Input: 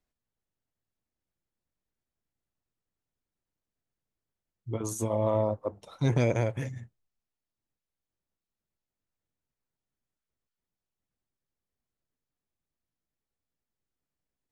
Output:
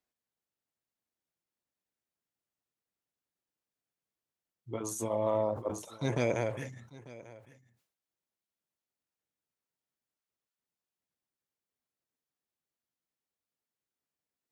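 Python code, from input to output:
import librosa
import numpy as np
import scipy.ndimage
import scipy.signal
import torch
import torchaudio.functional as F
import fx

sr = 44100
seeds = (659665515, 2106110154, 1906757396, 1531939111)

p1 = fx.highpass(x, sr, hz=290.0, slope=6)
p2 = p1 + fx.echo_single(p1, sr, ms=894, db=-19.0, dry=0)
p3 = fx.sustainer(p2, sr, db_per_s=110.0)
y = p3 * 10.0 ** (-1.5 / 20.0)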